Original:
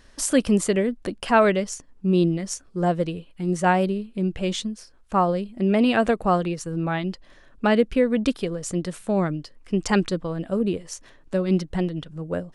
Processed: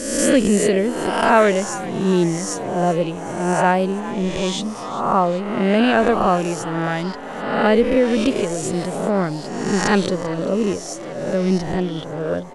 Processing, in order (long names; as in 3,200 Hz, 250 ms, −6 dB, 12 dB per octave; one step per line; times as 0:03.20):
peak hold with a rise ahead of every peak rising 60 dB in 1.08 s
parametric band 480 Hz +2.5 dB 2.8 octaves
echo with shifted repeats 391 ms, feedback 64%, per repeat +110 Hz, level −16 dB